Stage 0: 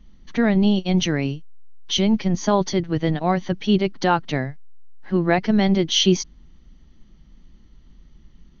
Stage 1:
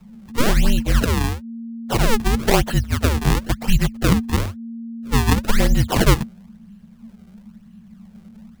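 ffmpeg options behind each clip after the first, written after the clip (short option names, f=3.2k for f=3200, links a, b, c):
-af "acrusher=samples=31:mix=1:aa=0.000001:lfo=1:lforange=49.6:lforate=1,afreqshift=-230,volume=3dB"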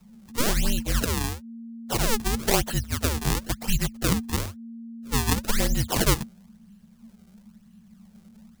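-af "bass=f=250:g=-2,treble=f=4k:g=8,volume=-6.5dB"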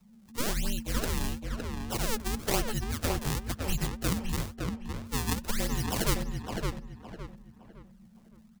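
-filter_complex "[0:a]asplit=2[a][b];[b]adelay=562,lowpass=f=2.5k:p=1,volume=-3dB,asplit=2[c][d];[d]adelay=562,lowpass=f=2.5k:p=1,volume=0.34,asplit=2[e][f];[f]adelay=562,lowpass=f=2.5k:p=1,volume=0.34,asplit=2[g][h];[h]adelay=562,lowpass=f=2.5k:p=1,volume=0.34[i];[a][c][e][g][i]amix=inputs=5:normalize=0,volume=-7dB"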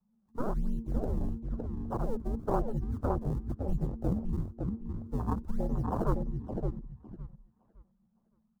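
-af "afwtdn=0.0251,highshelf=f=1.6k:t=q:w=1.5:g=-12"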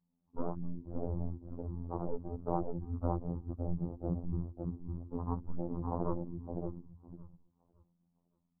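-af "lowpass=f=1.1k:w=0.5412,lowpass=f=1.1k:w=1.3066,afftfilt=real='hypot(re,im)*cos(PI*b)':imag='0':win_size=2048:overlap=0.75"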